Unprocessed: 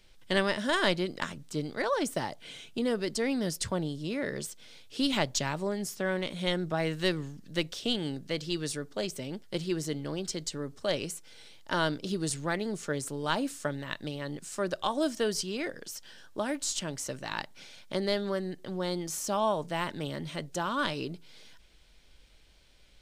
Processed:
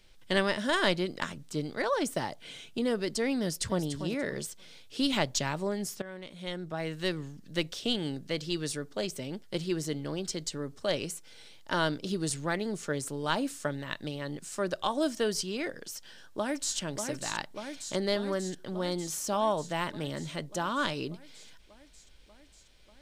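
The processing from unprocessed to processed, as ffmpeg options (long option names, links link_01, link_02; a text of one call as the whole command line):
ffmpeg -i in.wav -filter_complex "[0:a]asplit=2[link_01][link_02];[link_02]afade=type=in:start_time=3.4:duration=0.01,afade=type=out:start_time=3.85:duration=0.01,aecho=0:1:290|580|870:0.334965|0.0837414|0.0209353[link_03];[link_01][link_03]amix=inputs=2:normalize=0,asplit=2[link_04][link_05];[link_05]afade=type=in:start_time=15.96:duration=0.01,afade=type=out:start_time=16.77:duration=0.01,aecho=0:1:590|1180|1770|2360|2950|3540|4130|4720|5310|5900|6490|7080:0.501187|0.37589|0.281918|0.211438|0.158579|0.118934|0.0892006|0.0669004|0.0501753|0.0376315|0.0282236|0.0211677[link_06];[link_04][link_06]amix=inputs=2:normalize=0,asplit=2[link_07][link_08];[link_07]atrim=end=6.02,asetpts=PTS-STARTPTS,afade=type=out:start_time=6.016:duration=0.004:curve=hsin:silence=0.177828[link_09];[link_08]atrim=start=6.02,asetpts=PTS-STARTPTS,afade=type=in:duration=1.64:silence=0.177828[link_10];[link_09][link_10]concat=n=2:v=0:a=1" out.wav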